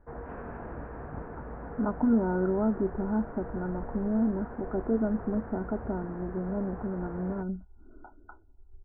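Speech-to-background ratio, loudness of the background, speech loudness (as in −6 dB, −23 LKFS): 11.5 dB, −42.5 LKFS, −31.0 LKFS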